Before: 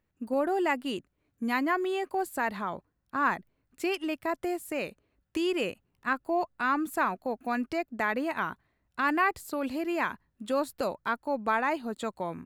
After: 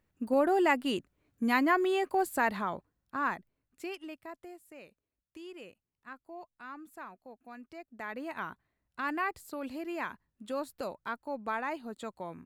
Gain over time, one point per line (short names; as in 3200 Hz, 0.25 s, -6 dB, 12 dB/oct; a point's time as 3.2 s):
2.44 s +1.5 dB
4.02 s -11 dB
4.61 s -18 dB
7.63 s -18 dB
8.36 s -7 dB